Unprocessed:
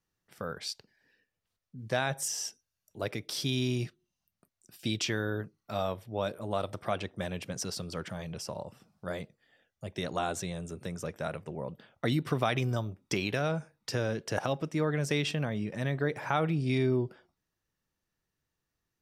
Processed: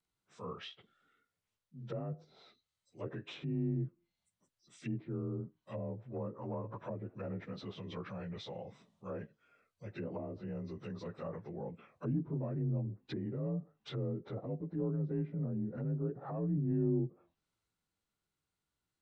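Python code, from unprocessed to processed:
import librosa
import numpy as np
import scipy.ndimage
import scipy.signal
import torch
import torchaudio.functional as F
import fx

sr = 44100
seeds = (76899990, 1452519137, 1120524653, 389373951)

y = fx.partial_stretch(x, sr, pct=88)
y = fx.env_lowpass_down(y, sr, base_hz=370.0, full_db=-31.0)
y = fx.band_shelf(y, sr, hz=1200.0, db=10.5, octaves=1.1, at=(6.08, 6.78))
y = fx.transient(y, sr, attack_db=-4, sustain_db=2)
y = y * 10.0 ** (-2.0 / 20.0)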